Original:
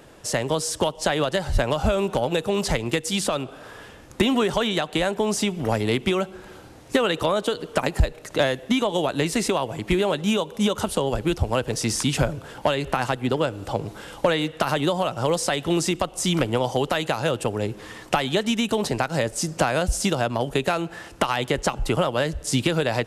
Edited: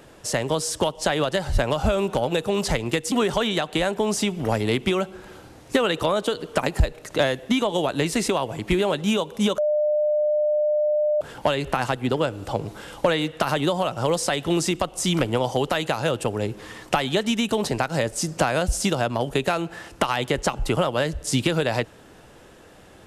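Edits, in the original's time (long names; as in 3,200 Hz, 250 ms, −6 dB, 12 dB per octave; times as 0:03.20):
0:03.12–0:04.32: remove
0:10.78–0:12.41: beep over 601 Hz −18 dBFS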